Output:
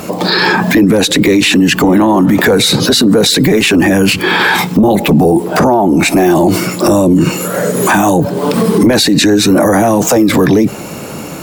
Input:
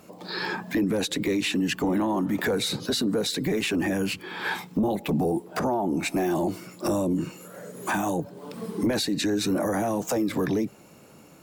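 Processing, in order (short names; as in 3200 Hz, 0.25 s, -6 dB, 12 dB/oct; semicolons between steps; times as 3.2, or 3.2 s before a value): maximiser +28 dB; gain -1 dB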